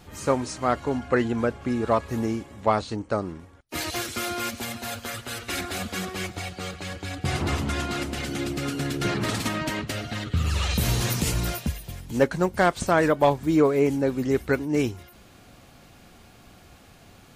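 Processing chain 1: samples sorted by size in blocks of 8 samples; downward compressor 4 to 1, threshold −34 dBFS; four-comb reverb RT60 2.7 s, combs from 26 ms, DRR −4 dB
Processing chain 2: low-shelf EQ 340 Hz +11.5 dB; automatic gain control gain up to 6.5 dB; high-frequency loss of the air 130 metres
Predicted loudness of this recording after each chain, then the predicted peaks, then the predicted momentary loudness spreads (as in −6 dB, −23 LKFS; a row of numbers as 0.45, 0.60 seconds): −28.5, −17.5 LKFS; −16.5, −1.5 dBFS; 11, 9 LU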